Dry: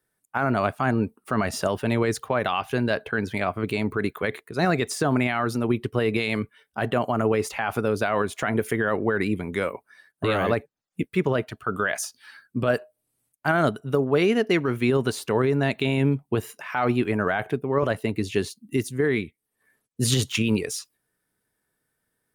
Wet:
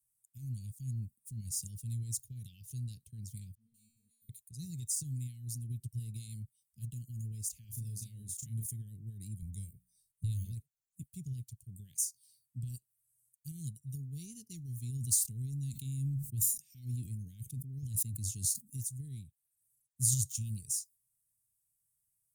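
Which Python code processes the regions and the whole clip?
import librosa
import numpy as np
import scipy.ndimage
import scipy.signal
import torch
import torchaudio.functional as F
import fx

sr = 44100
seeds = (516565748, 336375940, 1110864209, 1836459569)

y = fx.chain(x, sr, fx.comb_fb(f0_hz=230.0, decay_s=0.77, harmonics='all', damping=0.0, mix_pct=100),
    fx.dispersion(late='highs', ms=50.0, hz=400.0), at=(3.55, 4.29))
y = fx.chain(y, sr, fx.highpass(hz=50.0, slope=12),
    fx.doubler(ms=35.0, db=-4.5), at=(7.64, 8.66))
y = fx.chain(y, sr, fx.low_shelf(hz=120.0, db=12.0),
    fx.hum_notches(base_hz=60, count=4), at=(9.42, 10.45))
y = fx.chain(y, sr, fx.peak_eq(hz=260.0, db=4.0, octaves=0.43),
    fx.sustainer(db_per_s=70.0), at=(14.92, 18.75))
y = scipy.signal.sosfilt(scipy.signal.ellip(3, 1.0, 80, [130.0, 7100.0], 'bandstop', fs=sr, output='sos'), y)
y = fx.tilt_shelf(y, sr, db=-4.5, hz=970.0)
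y = F.gain(torch.from_numpy(y), -3.5).numpy()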